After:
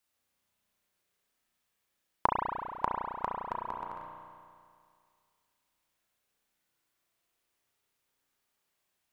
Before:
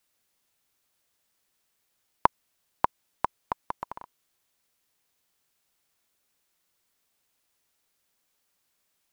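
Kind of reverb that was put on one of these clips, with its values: spring tank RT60 2.2 s, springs 33 ms, chirp 40 ms, DRR -1.5 dB; gain -6.5 dB

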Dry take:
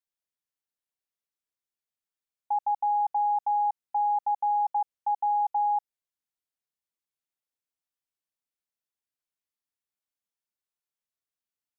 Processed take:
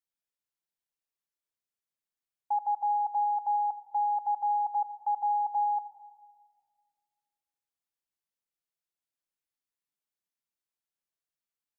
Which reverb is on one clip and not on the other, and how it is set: shoebox room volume 3600 m³, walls mixed, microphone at 0.75 m; gain -3 dB

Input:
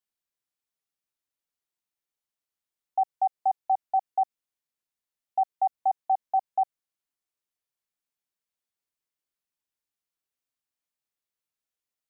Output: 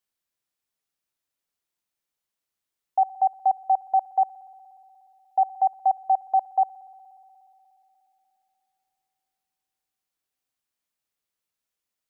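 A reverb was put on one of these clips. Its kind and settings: spring tank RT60 3.5 s, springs 59 ms, chirp 25 ms, DRR 16 dB; gain +4 dB

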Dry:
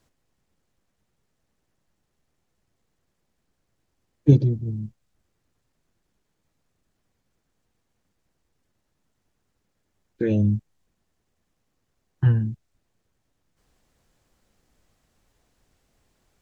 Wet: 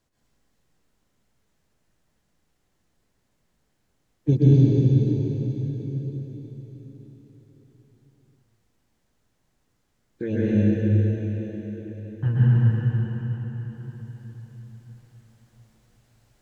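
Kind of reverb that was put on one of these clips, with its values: plate-style reverb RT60 4.8 s, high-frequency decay 1×, pre-delay 0.11 s, DRR -9.5 dB; gain -6 dB

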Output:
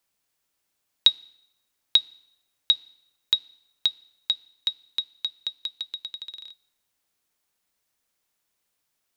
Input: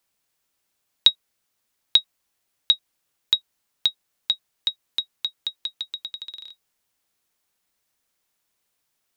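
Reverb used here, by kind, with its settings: FDN reverb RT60 0.83 s, low-frequency decay 1×, high-frequency decay 0.95×, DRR 19.5 dB; gain -2 dB

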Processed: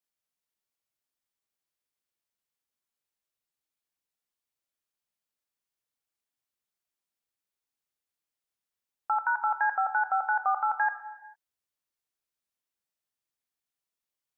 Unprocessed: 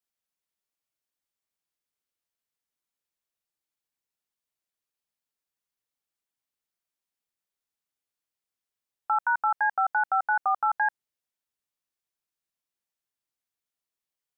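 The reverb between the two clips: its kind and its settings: non-linear reverb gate 0.48 s falling, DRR 9 dB; gain -1.5 dB

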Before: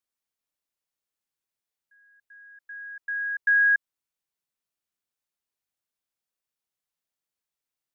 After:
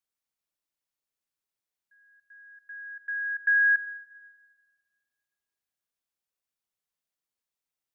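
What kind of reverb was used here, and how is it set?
plate-style reverb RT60 1.9 s, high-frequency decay 0.8×, DRR 17 dB; gain -2 dB

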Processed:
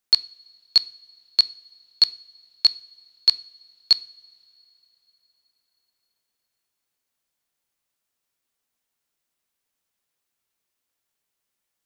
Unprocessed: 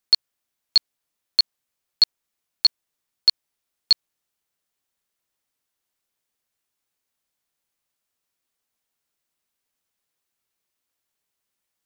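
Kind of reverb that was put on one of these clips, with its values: two-slope reverb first 0.44 s, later 3.9 s, from -20 dB, DRR 15.5 dB

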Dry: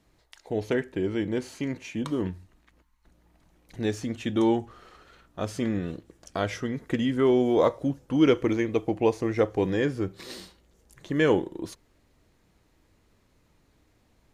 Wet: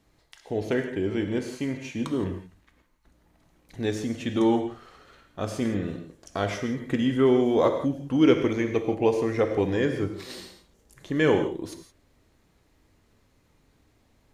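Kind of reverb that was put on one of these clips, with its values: non-linear reverb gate 0.19 s flat, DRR 5.5 dB

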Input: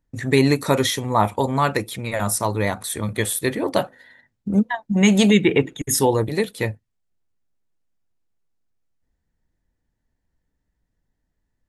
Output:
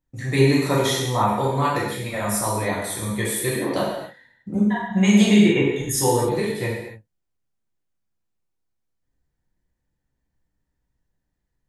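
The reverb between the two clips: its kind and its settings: non-linear reverb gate 0.32 s falling, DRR -6 dB; gain -8 dB

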